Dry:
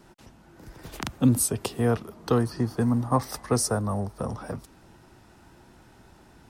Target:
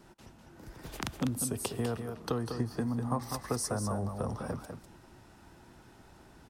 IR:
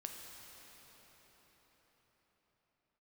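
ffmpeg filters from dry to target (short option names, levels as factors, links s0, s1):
-filter_complex "[0:a]acompressor=threshold=0.0501:ratio=6,aecho=1:1:199:0.447,asplit=2[s0][s1];[1:a]atrim=start_sample=2205,afade=t=out:st=0.32:d=0.01,atrim=end_sample=14553[s2];[s1][s2]afir=irnorm=-1:irlink=0,volume=0.211[s3];[s0][s3]amix=inputs=2:normalize=0,volume=0.631"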